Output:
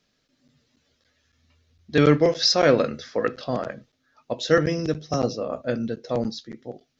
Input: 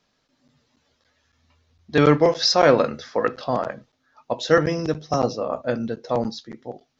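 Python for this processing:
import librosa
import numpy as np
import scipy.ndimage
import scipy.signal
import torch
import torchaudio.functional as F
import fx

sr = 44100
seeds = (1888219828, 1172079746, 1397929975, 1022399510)

y = fx.peak_eq(x, sr, hz=920.0, db=-9.5, octaves=0.86)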